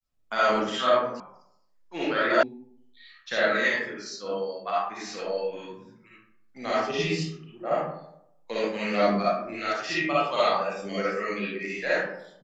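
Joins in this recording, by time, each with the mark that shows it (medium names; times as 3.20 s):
1.20 s: sound stops dead
2.43 s: sound stops dead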